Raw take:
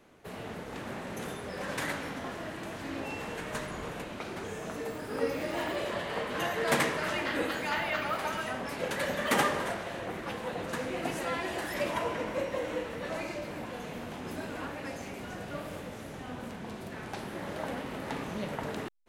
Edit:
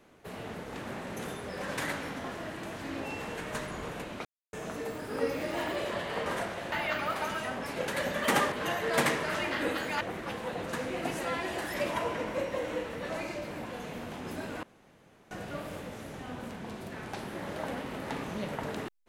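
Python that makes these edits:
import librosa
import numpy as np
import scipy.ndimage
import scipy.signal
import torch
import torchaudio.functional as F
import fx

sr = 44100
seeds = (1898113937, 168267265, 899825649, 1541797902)

y = fx.edit(x, sr, fx.silence(start_s=4.25, length_s=0.28),
    fx.swap(start_s=6.26, length_s=1.49, other_s=9.55, other_length_s=0.46),
    fx.room_tone_fill(start_s=14.63, length_s=0.68), tone=tone)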